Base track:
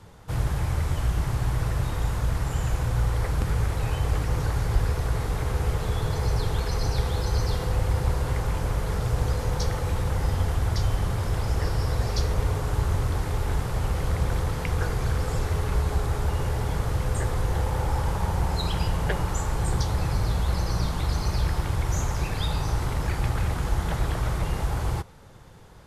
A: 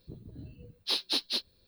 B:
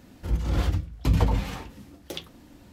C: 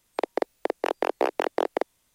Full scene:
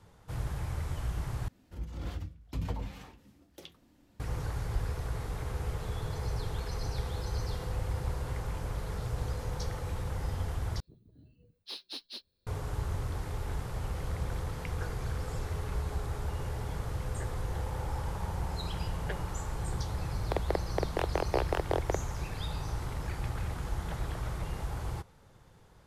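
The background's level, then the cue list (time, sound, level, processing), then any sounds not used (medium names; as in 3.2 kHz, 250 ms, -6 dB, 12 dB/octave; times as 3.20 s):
base track -9.5 dB
1.48 s: replace with B -13.5 dB
7.88 s: add A -16.5 dB + compression, threshold -45 dBFS
10.80 s: replace with A -12.5 dB
20.13 s: add C -6 dB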